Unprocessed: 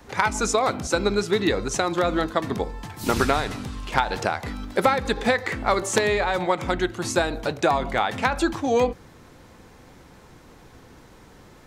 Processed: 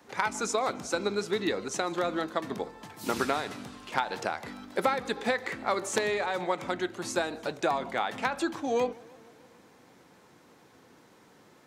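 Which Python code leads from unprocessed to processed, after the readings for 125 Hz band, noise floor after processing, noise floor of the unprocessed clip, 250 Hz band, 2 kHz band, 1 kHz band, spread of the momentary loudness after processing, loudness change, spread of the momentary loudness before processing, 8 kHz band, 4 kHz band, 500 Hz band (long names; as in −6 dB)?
−13.5 dB, −58 dBFS, −50 dBFS, −8.0 dB, −7.0 dB, −7.0 dB, 6 LU, −7.0 dB, 6 LU, −7.0 dB, −7.0 dB, −7.0 dB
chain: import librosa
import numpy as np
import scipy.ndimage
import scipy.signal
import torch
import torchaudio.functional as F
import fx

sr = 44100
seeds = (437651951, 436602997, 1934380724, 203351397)

y = scipy.signal.sosfilt(scipy.signal.butter(2, 180.0, 'highpass', fs=sr, output='sos'), x)
y = fx.echo_warbled(y, sr, ms=151, feedback_pct=66, rate_hz=2.8, cents=147, wet_db=-23.5)
y = y * librosa.db_to_amplitude(-7.0)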